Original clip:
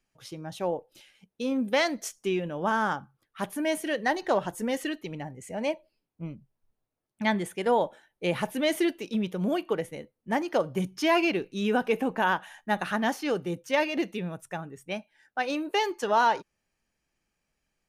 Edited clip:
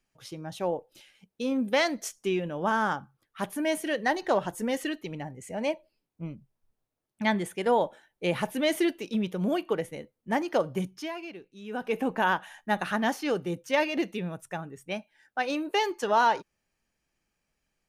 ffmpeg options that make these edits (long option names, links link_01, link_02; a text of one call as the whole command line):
ffmpeg -i in.wav -filter_complex "[0:a]asplit=3[link_01][link_02][link_03];[link_01]atrim=end=11.13,asetpts=PTS-STARTPTS,afade=type=out:start_time=10.72:duration=0.41:silence=0.16788[link_04];[link_02]atrim=start=11.13:end=11.66,asetpts=PTS-STARTPTS,volume=-15.5dB[link_05];[link_03]atrim=start=11.66,asetpts=PTS-STARTPTS,afade=type=in:duration=0.41:silence=0.16788[link_06];[link_04][link_05][link_06]concat=n=3:v=0:a=1" out.wav